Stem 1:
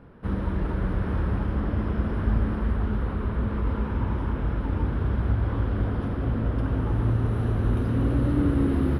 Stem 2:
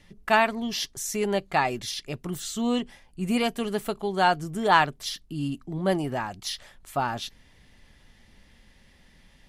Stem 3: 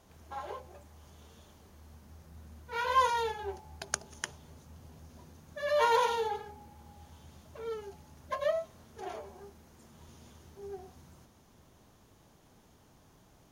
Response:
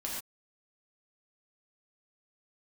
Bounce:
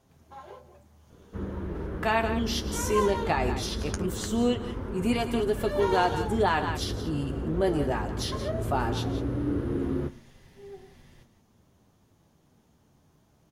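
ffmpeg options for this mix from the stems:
-filter_complex "[0:a]adelay=1100,volume=-5.5dB,asplit=2[a][b];[b]volume=-14dB[c];[1:a]adelay=1750,volume=0.5dB,asplit=3[d][e][f];[e]volume=-17dB[g];[f]volume=-11.5dB[h];[2:a]equalizer=f=160:w=0.55:g=6,volume=-1.5dB,asplit=2[i][j];[j]volume=-17.5dB[k];[a][d]amix=inputs=2:normalize=0,equalizer=f=400:t=o:w=0.82:g=8.5,alimiter=limit=-12dB:level=0:latency=1:release=110,volume=0dB[l];[3:a]atrim=start_sample=2205[m];[c][g]amix=inputs=2:normalize=0[n];[n][m]afir=irnorm=-1:irlink=0[o];[h][k]amix=inputs=2:normalize=0,aecho=0:1:177:1[p];[i][l][o][p]amix=inputs=4:normalize=0,flanger=delay=7.4:depth=6.2:regen=-42:speed=0.19:shape=sinusoidal"

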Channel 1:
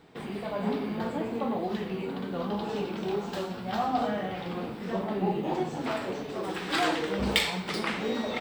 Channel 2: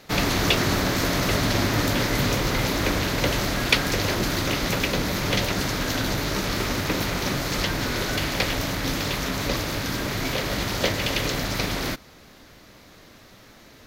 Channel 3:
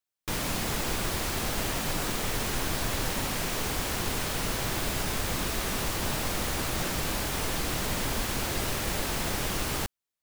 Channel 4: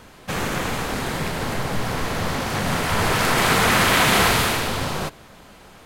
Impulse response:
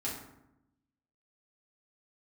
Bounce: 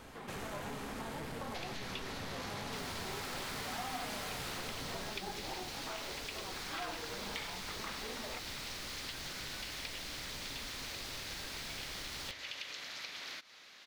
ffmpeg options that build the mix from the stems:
-filter_complex "[0:a]equalizer=f=1.1k:w=0.51:g=12,volume=-14dB[a];[1:a]acompressor=threshold=-29dB:ratio=6,bandpass=f=3.2k:t=q:w=0.86:csg=0,adelay=1450,volume=-1dB[b];[2:a]equalizer=f=4.5k:w=1.1:g=10.5,adelay=2450,volume=-12.5dB,asplit=2[c][d];[d]volume=-15.5dB[e];[3:a]asoftclip=type=tanh:threshold=-26dB,volume=-9dB,asplit=2[f][g];[g]volume=-9.5dB[h];[4:a]atrim=start_sample=2205[i];[e][h]amix=inputs=2:normalize=0[j];[j][i]afir=irnorm=-1:irlink=0[k];[a][b][c][f][k]amix=inputs=5:normalize=0,acompressor=threshold=-46dB:ratio=2"

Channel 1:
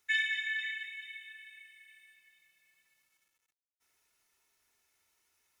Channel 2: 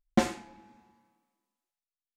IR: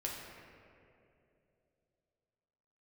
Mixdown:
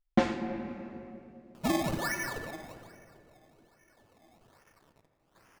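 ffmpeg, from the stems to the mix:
-filter_complex "[0:a]acompressor=mode=upward:threshold=-45dB:ratio=2.5,acrusher=samples=21:mix=1:aa=0.000001:lfo=1:lforange=21:lforate=1.2,equalizer=f=2.2k:t=o:w=0.22:g=-3.5,adelay=1550,volume=-1dB,afade=t=out:st=2.5:d=0.49:silence=0.251189,afade=t=in:st=3.79:d=0.7:silence=0.398107,asplit=2[a][b];[b]volume=-5.5dB[c];[1:a]lowpass=3.9k,dynaudnorm=f=270:g=3:m=5dB,volume=-4dB,asplit=2[d][e];[e]volume=-6.5dB[f];[2:a]atrim=start_sample=2205[g];[c][f]amix=inputs=2:normalize=0[h];[h][g]afir=irnorm=-1:irlink=0[i];[a][d][i]amix=inputs=3:normalize=0,dynaudnorm=f=170:g=5:m=7.5dB"

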